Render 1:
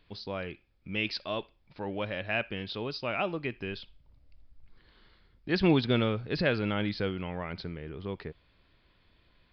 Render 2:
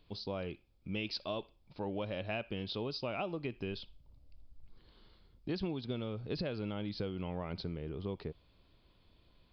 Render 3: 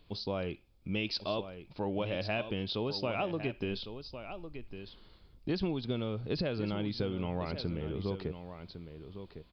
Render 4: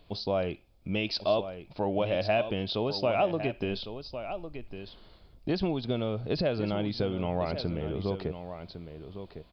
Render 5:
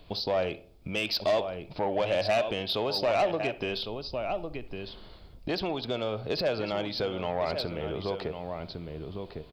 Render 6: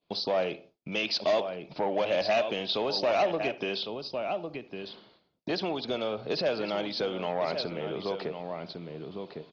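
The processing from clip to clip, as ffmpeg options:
-af "equalizer=f=1.8k:t=o:w=0.93:g=-11,acompressor=threshold=-33dB:ratio=16"
-af "aecho=1:1:1105:0.299,volume=4dB"
-af "equalizer=f=660:w=2.6:g=8,volume=3dB"
-filter_complex "[0:a]acrossover=split=460[a][b];[a]acompressor=threshold=-41dB:ratio=10[c];[b]asoftclip=type=tanh:threshold=-27dB[d];[c][d]amix=inputs=2:normalize=0,asplit=2[e][f];[f]adelay=64,lowpass=f=1.1k:p=1,volume=-16dB,asplit=2[g][h];[h]adelay=64,lowpass=f=1.1k:p=1,volume=0.52,asplit=2[i][j];[j]adelay=64,lowpass=f=1.1k:p=1,volume=0.52,asplit=2[k][l];[l]adelay=64,lowpass=f=1.1k:p=1,volume=0.52,asplit=2[m][n];[n]adelay=64,lowpass=f=1.1k:p=1,volume=0.52[o];[e][g][i][k][m][o]amix=inputs=6:normalize=0,volume=5.5dB"
-af "highpass=f=150:w=0.5412,highpass=f=150:w=1.3066,agate=range=-33dB:threshold=-46dB:ratio=3:detection=peak" -ar 48000 -c:a ac3 -b:a 32k

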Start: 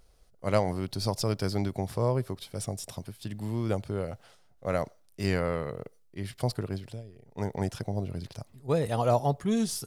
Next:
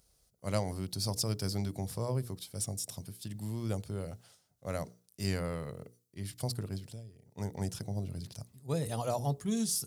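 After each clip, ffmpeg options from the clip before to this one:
-af "highpass=69,bass=f=250:g=7,treble=f=4k:g=13,bandreject=f=60:t=h:w=6,bandreject=f=120:t=h:w=6,bandreject=f=180:t=h:w=6,bandreject=f=240:t=h:w=6,bandreject=f=300:t=h:w=6,bandreject=f=360:t=h:w=6,bandreject=f=420:t=h:w=6,bandreject=f=480:t=h:w=6,volume=-9dB"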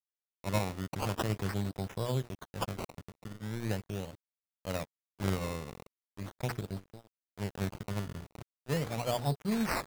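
-af "aeval=exprs='sgn(val(0))*max(abs(val(0))-0.00668,0)':c=same,areverse,acompressor=mode=upward:threshold=-54dB:ratio=2.5,areverse,acrusher=samples=19:mix=1:aa=0.000001:lfo=1:lforange=19:lforate=0.4,volume=2.5dB"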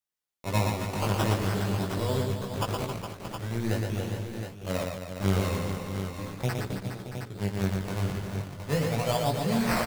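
-filter_complex "[0:a]flanger=delay=16.5:depth=5.1:speed=0.31,asplit=2[a][b];[b]aecho=0:1:117|268|414|494|625|717:0.631|0.355|0.355|0.106|0.224|0.398[c];[a][c]amix=inputs=2:normalize=0,volume=7dB"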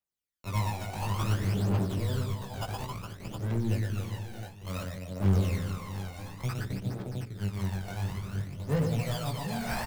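-filter_complex "[0:a]aphaser=in_gain=1:out_gain=1:delay=1.4:decay=0.64:speed=0.57:type=triangular,acrossover=split=170[a][b];[b]asoftclip=type=tanh:threshold=-21.5dB[c];[a][c]amix=inputs=2:normalize=0,volume=-6dB"

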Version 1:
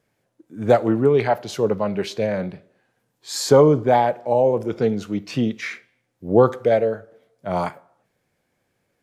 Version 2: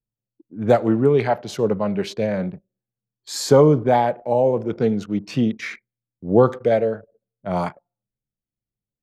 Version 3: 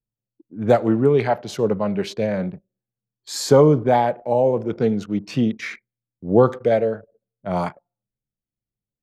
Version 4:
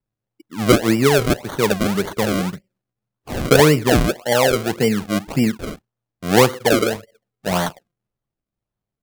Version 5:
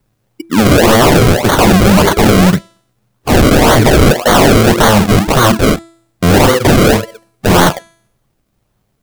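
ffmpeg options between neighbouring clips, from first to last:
-af "anlmdn=0.631,equalizer=f=180:t=o:w=1.3:g=4,volume=-1dB"
-af anull
-filter_complex "[0:a]asplit=2[a][b];[b]acompressor=threshold=-25dB:ratio=6,volume=-2.5dB[c];[a][c]amix=inputs=2:normalize=0,acrusher=samples=34:mix=1:aa=0.000001:lfo=1:lforange=34:lforate=1.8"
-af "aeval=exprs='0.841*sin(PI/2*10*val(0)/0.841)':c=same,bandreject=f=332.9:t=h:w=4,bandreject=f=665.8:t=h:w=4,bandreject=f=998.7:t=h:w=4,bandreject=f=1.3316k:t=h:w=4,bandreject=f=1.6645k:t=h:w=4,bandreject=f=1.9974k:t=h:w=4,bandreject=f=2.3303k:t=h:w=4,bandreject=f=2.6632k:t=h:w=4,bandreject=f=2.9961k:t=h:w=4,bandreject=f=3.329k:t=h:w=4,bandreject=f=3.6619k:t=h:w=4,bandreject=f=3.9948k:t=h:w=4,bandreject=f=4.3277k:t=h:w=4,bandreject=f=4.6606k:t=h:w=4,bandreject=f=4.9935k:t=h:w=4,bandreject=f=5.3264k:t=h:w=4,bandreject=f=5.6593k:t=h:w=4,bandreject=f=5.9922k:t=h:w=4,bandreject=f=6.3251k:t=h:w=4,bandreject=f=6.658k:t=h:w=4,bandreject=f=6.9909k:t=h:w=4,bandreject=f=7.3238k:t=h:w=4,bandreject=f=7.6567k:t=h:w=4,bandreject=f=7.9896k:t=h:w=4,bandreject=f=8.3225k:t=h:w=4,bandreject=f=8.6554k:t=h:w=4,bandreject=f=8.9883k:t=h:w=4,bandreject=f=9.3212k:t=h:w=4,bandreject=f=9.6541k:t=h:w=4,bandreject=f=9.987k:t=h:w=4,bandreject=f=10.3199k:t=h:w=4,bandreject=f=10.6528k:t=h:w=4,bandreject=f=10.9857k:t=h:w=4,bandreject=f=11.3186k:t=h:w=4,volume=-2dB"

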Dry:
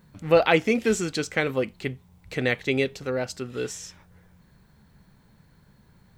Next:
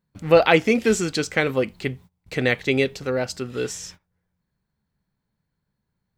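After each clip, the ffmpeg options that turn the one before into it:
-af "agate=range=-24dB:threshold=-46dB:ratio=16:detection=peak,equalizer=f=4.8k:t=o:w=0.22:g=2.5,volume=3.5dB"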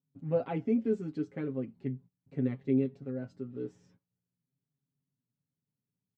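-af "aecho=1:1:7.3:0.85,flanger=delay=7.4:depth=2.3:regen=47:speed=0.42:shape=sinusoidal,bandpass=f=220:t=q:w=1.7:csg=0,volume=-3.5dB"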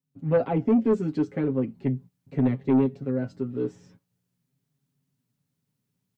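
-filter_complex "[0:a]acrossover=split=280|920[a][b][c];[c]alimiter=level_in=18dB:limit=-24dB:level=0:latency=1:release=499,volume=-18dB[d];[a][b][d]amix=inputs=3:normalize=0,dynaudnorm=f=140:g=3:m=10.5dB,asoftclip=type=tanh:threshold=-14dB"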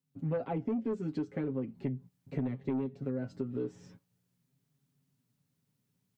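-af "acompressor=threshold=-32dB:ratio=5"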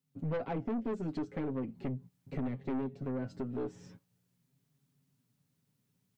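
-af "aeval=exprs='(tanh(39.8*val(0)+0.3)-tanh(0.3))/39.8':c=same,volume=2dB"

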